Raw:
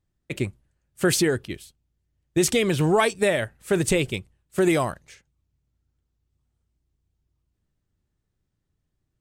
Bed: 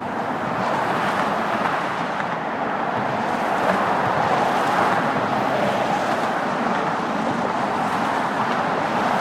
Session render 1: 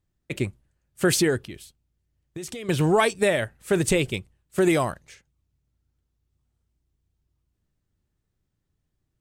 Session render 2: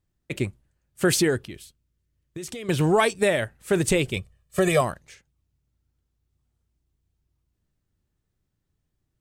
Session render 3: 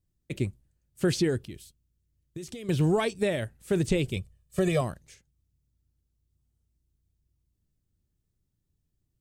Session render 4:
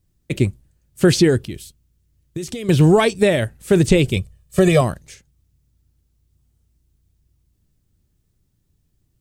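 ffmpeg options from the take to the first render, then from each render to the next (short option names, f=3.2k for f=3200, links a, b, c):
-filter_complex "[0:a]asettb=1/sr,asplit=3[a][b][c];[a]atrim=end=1.474[d];[b]atrim=start=1.47:end=2.69,asetpts=PTS-STARTPTS,afade=t=in:d=0.004:c=qsin,afade=t=out:st=1.216:d=0.004:c=qsin,acompressor=threshold=-33dB:ratio=6:attack=3.2:release=140:knee=1:detection=peak[e];[c]atrim=start=2.686[f];[d][e]acrossfade=d=0.004:c1=hsin:c2=qsin[g];[g][f]acrossfade=d=0.004:c1=qsin:c2=hsin"
-filter_complex "[0:a]asettb=1/sr,asplit=3[a][b][c];[a]atrim=end=1.574[d];[b]atrim=start=1.57:end=2.48,asetpts=PTS-STARTPTS,afade=t=in:d=0.004:c=qsin,afade=t=out:st=0.906:d=0.004:c=qsin,equalizer=f=780:t=o:w=0.27:g=-9.5[e];[c]atrim=start=2.476[f];[d][e]acrossfade=d=0.004:c1=hsin:c2=qsin[g];[g][f]acrossfade=d=0.004:c1=qsin:c2=hsin,asettb=1/sr,asplit=3[h][i][j];[h]atrim=end=4.164[k];[i]atrim=start=4.16:end=4.81,asetpts=PTS-STARTPTS,afade=t=in:d=0.004:c=qsin,afade=t=out:st=0.646:d=0.004:c=qsin,aecho=1:1:1.7:0.96,atrim=end_sample=28665[l];[j]atrim=start=4.806[m];[k][l]acrossfade=d=0.004:c1=hsin:c2=qsin[n];[n][m]acrossfade=d=0.004:c1=qsin:c2=hsin"
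-filter_complex "[0:a]acrossover=split=5500[a][b];[b]acompressor=threshold=-46dB:ratio=4:attack=1:release=60[c];[a][c]amix=inputs=2:normalize=0,equalizer=f=1.3k:w=0.39:g=-10.5"
-af "volume=11.5dB"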